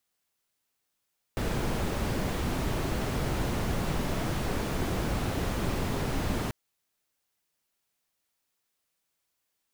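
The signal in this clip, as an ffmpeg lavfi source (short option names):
-f lavfi -i "anoisesrc=c=brown:a=0.166:d=5.14:r=44100:seed=1"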